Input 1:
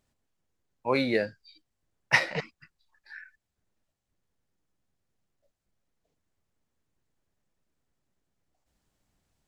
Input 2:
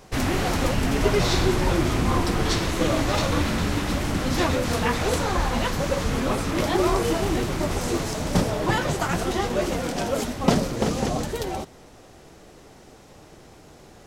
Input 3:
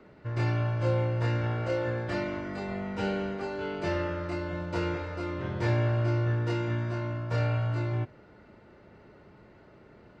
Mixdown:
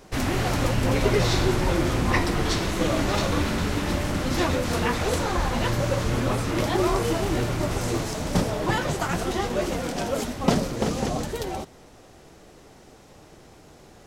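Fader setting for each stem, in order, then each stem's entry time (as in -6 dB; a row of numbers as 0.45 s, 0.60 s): -5.5 dB, -1.5 dB, -3.0 dB; 0.00 s, 0.00 s, 0.00 s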